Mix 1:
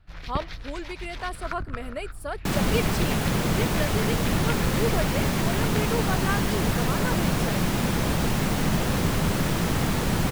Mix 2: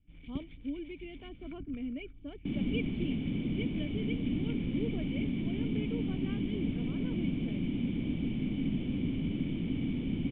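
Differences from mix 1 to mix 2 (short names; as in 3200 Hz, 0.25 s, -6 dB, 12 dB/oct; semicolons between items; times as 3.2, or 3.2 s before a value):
speech +5.0 dB; master: add vocal tract filter i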